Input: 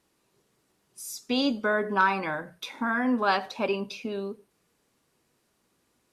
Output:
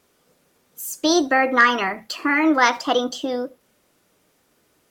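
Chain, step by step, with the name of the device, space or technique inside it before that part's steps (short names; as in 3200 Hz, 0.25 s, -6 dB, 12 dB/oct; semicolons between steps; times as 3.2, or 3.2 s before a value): nightcore (varispeed +25%); gain +8 dB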